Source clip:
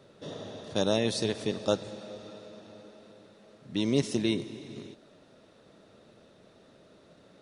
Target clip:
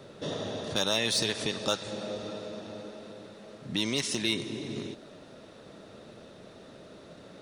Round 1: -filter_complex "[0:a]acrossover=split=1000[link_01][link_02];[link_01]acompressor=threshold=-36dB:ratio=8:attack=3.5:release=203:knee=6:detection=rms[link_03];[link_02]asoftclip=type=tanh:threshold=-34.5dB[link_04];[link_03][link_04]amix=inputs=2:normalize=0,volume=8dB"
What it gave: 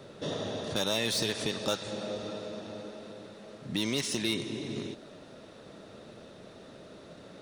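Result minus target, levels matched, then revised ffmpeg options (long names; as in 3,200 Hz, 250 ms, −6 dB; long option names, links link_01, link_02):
soft clipping: distortion +8 dB
-filter_complex "[0:a]acrossover=split=1000[link_01][link_02];[link_01]acompressor=threshold=-36dB:ratio=8:attack=3.5:release=203:knee=6:detection=rms[link_03];[link_02]asoftclip=type=tanh:threshold=-27dB[link_04];[link_03][link_04]amix=inputs=2:normalize=0,volume=8dB"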